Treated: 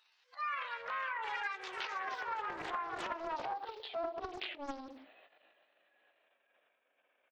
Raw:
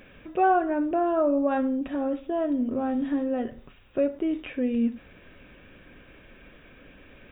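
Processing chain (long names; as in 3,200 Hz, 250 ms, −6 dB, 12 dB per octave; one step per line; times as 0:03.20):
pitch glide at a constant tempo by +8 semitones ending unshifted
source passing by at 0:02.45, 12 m/s, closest 14 metres
single-tap delay 176 ms −22 dB
noise reduction from a noise print of the clip's start 11 dB
transient designer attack −11 dB, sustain +11 dB
high-pass filter sweep 1,500 Hz → 700 Hz, 0:01.95–0:04.45
delay with pitch and tempo change per echo 121 ms, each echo +3 semitones, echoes 3, each echo −6 dB
downward compressor 10 to 1, threshold −34 dBFS, peak gain reduction 12 dB
highs frequency-modulated by the lows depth 0.71 ms
level −1 dB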